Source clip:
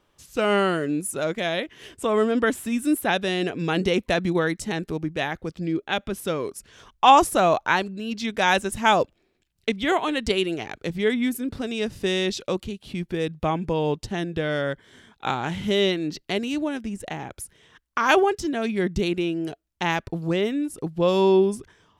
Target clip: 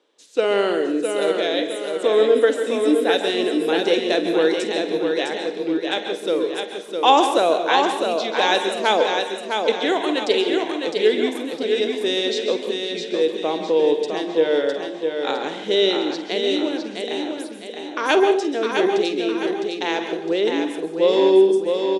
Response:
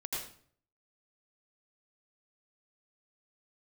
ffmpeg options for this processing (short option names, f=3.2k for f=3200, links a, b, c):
-filter_complex "[0:a]highpass=f=270:w=0.5412,highpass=f=270:w=1.3066,equalizer=f=300:t=q:w=4:g=4,equalizer=f=470:t=q:w=4:g=10,equalizer=f=1.2k:t=q:w=4:g=-5,equalizer=f=3.8k:t=q:w=4:g=8,lowpass=f=8.9k:w=0.5412,lowpass=f=8.9k:w=1.3066,aecho=1:1:658|1316|1974|2632|3290:0.562|0.242|0.104|0.0447|0.0192,asplit=2[a][b];[1:a]atrim=start_sample=2205,adelay=50[c];[b][c]afir=irnorm=-1:irlink=0,volume=-9dB[d];[a][d]amix=inputs=2:normalize=0,volume=-1dB"